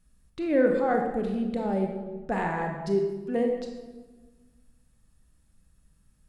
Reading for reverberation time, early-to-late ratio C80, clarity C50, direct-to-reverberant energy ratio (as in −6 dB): 1.3 s, 6.0 dB, 4.0 dB, 2.0 dB